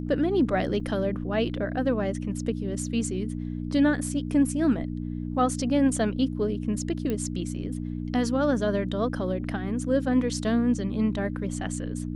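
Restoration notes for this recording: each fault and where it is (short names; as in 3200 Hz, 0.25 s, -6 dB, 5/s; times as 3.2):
hum 60 Hz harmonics 5 -32 dBFS
0.8 gap 3.3 ms
7.1 pop -17 dBFS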